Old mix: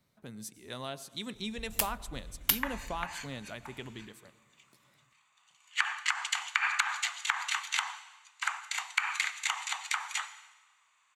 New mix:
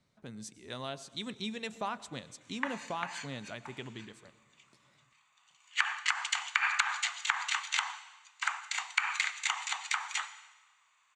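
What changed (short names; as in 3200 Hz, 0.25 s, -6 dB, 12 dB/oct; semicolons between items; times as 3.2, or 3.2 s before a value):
first sound: muted; master: add LPF 8300 Hz 24 dB/oct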